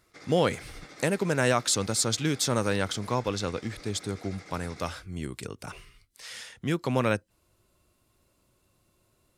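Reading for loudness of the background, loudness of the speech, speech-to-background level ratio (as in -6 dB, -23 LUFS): -48.0 LUFS, -28.5 LUFS, 19.5 dB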